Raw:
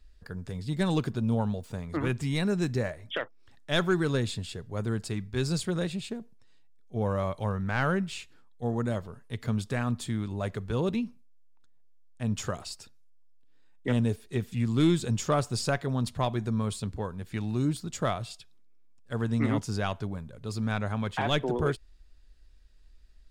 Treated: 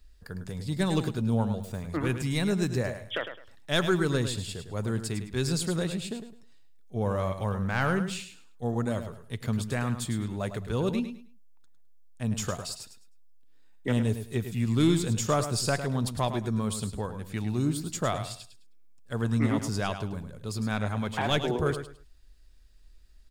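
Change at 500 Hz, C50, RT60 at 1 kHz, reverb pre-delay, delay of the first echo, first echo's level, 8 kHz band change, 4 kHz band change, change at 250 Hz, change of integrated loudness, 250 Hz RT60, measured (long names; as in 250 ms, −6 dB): +0.5 dB, no reverb audible, no reverb audible, no reverb audible, 105 ms, −9.5 dB, +5.0 dB, +2.0 dB, +0.5 dB, +0.5 dB, no reverb audible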